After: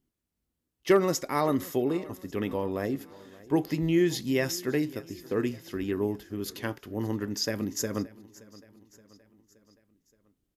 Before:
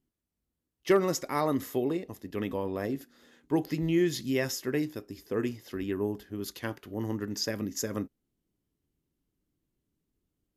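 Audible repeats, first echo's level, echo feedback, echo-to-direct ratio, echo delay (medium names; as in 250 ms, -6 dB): 3, -21.0 dB, 54%, -19.5 dB, 573 ms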